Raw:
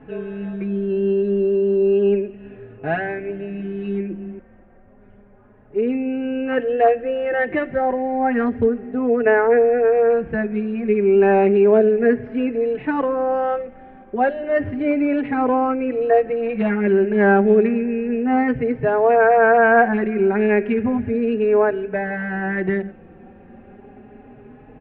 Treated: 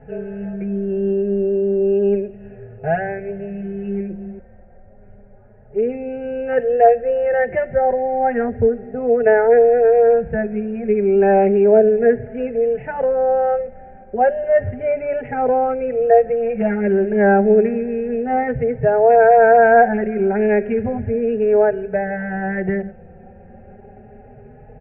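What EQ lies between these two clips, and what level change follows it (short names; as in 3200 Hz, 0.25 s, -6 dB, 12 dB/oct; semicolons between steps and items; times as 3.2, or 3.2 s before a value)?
air absorption 110 m; tilt shelf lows +6.5 dB, about 1400 Hz; fixed phaser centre 1100 Hz, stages 6; +1.0 dB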